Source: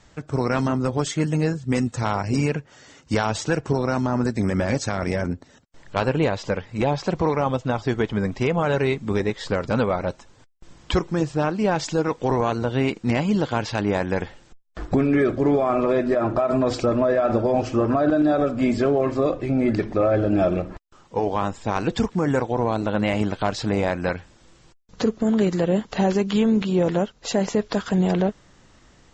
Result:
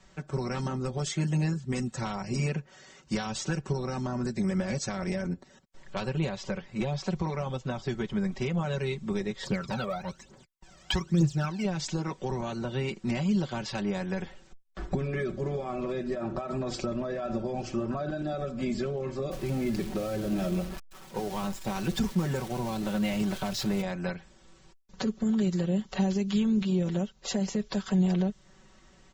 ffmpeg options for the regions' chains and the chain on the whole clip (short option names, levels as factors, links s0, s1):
-filter_complex "[0:a]asettb=1/sr,asplit=3[s0][s1][s2];[s0]atrim=end=9.434[s3];[s1]atrim=start=9.43:end=11.65,asetpts=PTS-STARTPTS,afade=t=in:d=0.004:c=qsin,afade=t=out:st=2.216:d=0.004:c=qsin,highpass=f=130:p=1,aphaser=in_gain=1:out_gain=1:delay=1.7:decay=0.74:speed=1.1:type=triangular[s4];[s2]atrim=start=11.646[s5];[s3][s4]acrossfade=d=0.004:c1=hsin:c2=qsin[s6];[s6][s5]acrossfade=d=0.004:c1=qsin:c2=hsin,asettb=1/sr,asplit=3[s7][s8][s9];[s7]atrim=end=19.314[s10];[s8]atrim=start=19.31:end=23.82,asetpts=PTS-STARTPTS,afade=t=in:d=0.004:c=qsin,afade=t=out:st=4.506:d=0.004:c=qsin,aeval=exprs='val(0)+0.5*0.0398*sgn(val(0))':c=same,agate=range=0.0224:threshold=0.0447:ratio=3:release=100:detection=peak[s11];[s9]atrim=start=23.816[s12];[s10][s11]acrossfade=d=0.004:c1=hsin:c2=qsin[s13];[s13][s12]acrossfade=d=0.004:c1=qsin:c2=hsin,aecho=1:1:5.3:0.83,acrossover=split=210|3000[s14][s15][s16];[s15]acompressor=threshold=0.0501:ratio=6[s17];[s14][s17][s16]amix=inputs=3:normalize=0,volume=0.473"